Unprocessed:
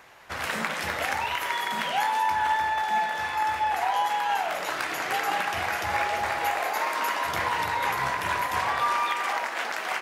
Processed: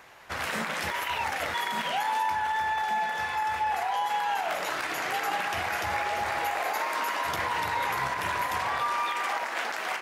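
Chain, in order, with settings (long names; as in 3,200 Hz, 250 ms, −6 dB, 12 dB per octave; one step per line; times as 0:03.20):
brickwall limiter −20 dBFS, peak gain reduction 7.5 dB
0:00.91–0:01.54: reverse
0:02.35–0:04.27: notch comb filter 310 Hz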